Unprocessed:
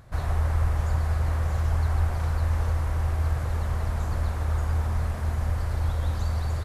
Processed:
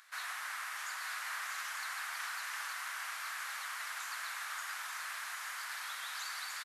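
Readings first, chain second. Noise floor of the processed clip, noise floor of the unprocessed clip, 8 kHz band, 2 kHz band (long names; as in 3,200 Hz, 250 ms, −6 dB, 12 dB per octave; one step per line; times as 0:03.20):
−43 dBFS, −30 dBFS, can't be measured, +3.5 dB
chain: high-pass filter 1,400 Hz 24 dB per octave
on a send: single-tap delay 887 ms −6 dB
on the sum: level +3.5 dB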